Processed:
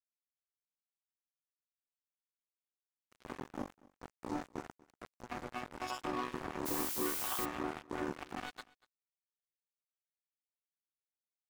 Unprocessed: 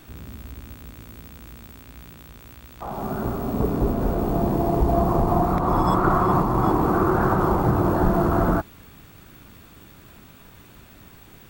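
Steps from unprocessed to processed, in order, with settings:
time-frequency cells dropped at random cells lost 58%
band-pass filter 140–6,100 Hz
bass and treble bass +5 dB, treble +12 dB
resonators tuned to a chord B3 minor, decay 0.68 s
dead-zone distortion −45 dBFS
brickwall limiter −43.5 dBFS, peak gain reduction 11 dB
single-tap delay 239 ms −23 dB
0:06.65–0:07.44: background noise blue −56 dBFS
level +17 dB

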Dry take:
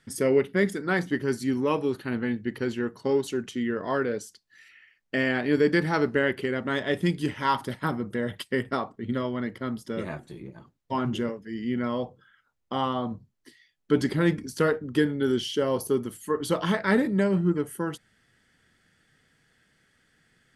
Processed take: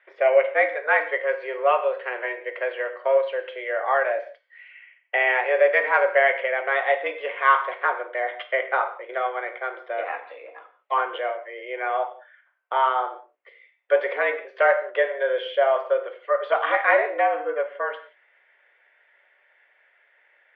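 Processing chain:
0:10.14–0:10.94: high-shelf EQ 2,100 Hz +8.5 dB
reverb whose tail is shaped and stops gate 210 ms falling, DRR 7 dB
single-sideband voice off tune +130 Hz 430–2,600 Hz
level +7 dB

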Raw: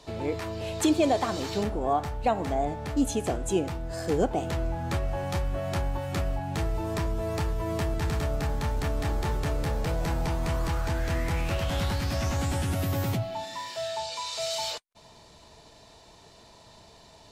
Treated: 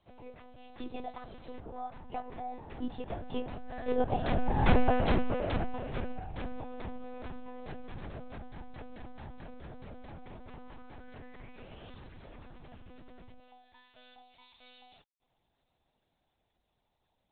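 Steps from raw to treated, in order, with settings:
source passing by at 0:04.78, 18 m/s, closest 4.7 metres
one-pitch LPC vocoder at 8 kHz 250 Hz
level +7 dB

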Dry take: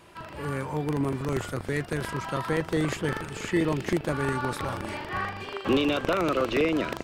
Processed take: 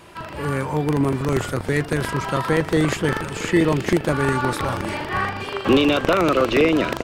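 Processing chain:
single-tap delay 917 ms −18 dB
level +7.5 dB

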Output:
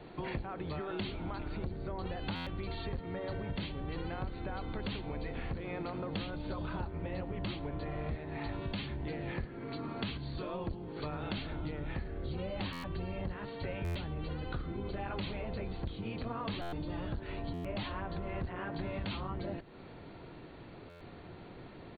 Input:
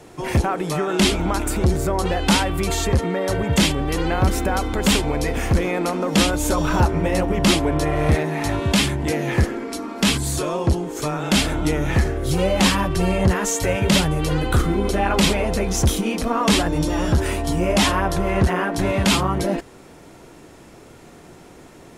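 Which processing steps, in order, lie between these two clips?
sub-octave generator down 1 octave, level −1 dB
downward compressor 8 to 1, threshold −29 dBFS, peak gain reduction 19.5 dB
linear-phase brick-wall low-pass 4,600 Hz
single-tap delay 107 ms −22.5 dB
buffer that repeats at 0:02.35/0:12.72/0:13.84/0:16.61/0:17.53/0:20.89, samples 512, times 9
level −6.5 dB

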